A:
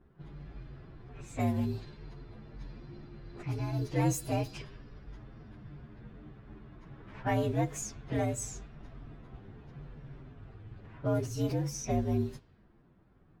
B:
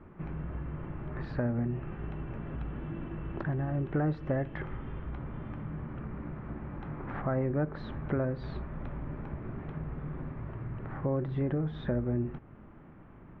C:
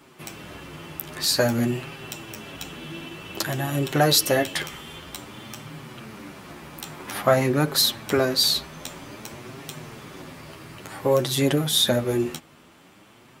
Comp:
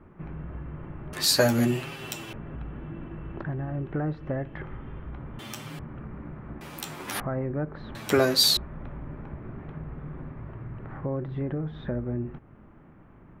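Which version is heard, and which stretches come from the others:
B
0:01.13–0:02.33: punch in from C
0:05.39–0:05.79: punch in from C
0:06.61–0:07.20: punch in from C
0:07.95–0:08.57: punch in from C
not used: A

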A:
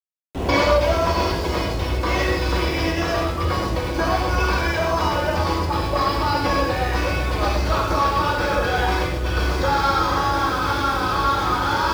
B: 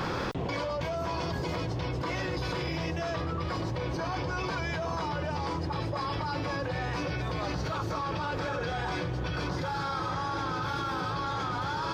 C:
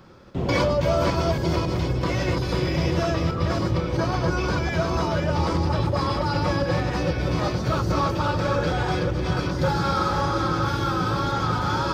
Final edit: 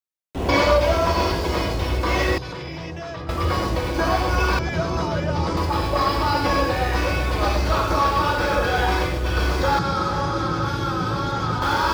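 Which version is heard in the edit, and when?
A
0:02.38–0:03.29: punch in from B
0:04.59–0:05.57: punch in from C
0:09.79–0:11.62: punch in from C

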